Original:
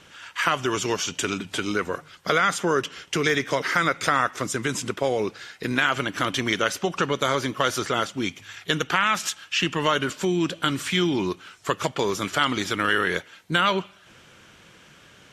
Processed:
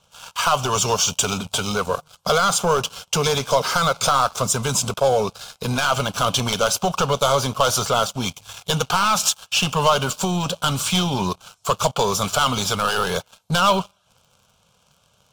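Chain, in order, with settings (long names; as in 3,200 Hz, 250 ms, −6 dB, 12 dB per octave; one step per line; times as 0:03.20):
leveller curve on the samples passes 3
phaser with its sweep stopped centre 780 Hz, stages 4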